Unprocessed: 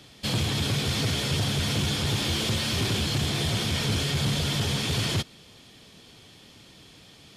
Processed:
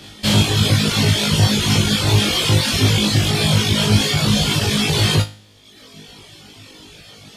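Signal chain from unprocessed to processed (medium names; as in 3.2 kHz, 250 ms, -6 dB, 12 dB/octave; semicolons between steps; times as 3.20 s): flutter echo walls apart 3.3 m, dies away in 0.47 s; reverb removal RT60 1.2 s; trim +9 dB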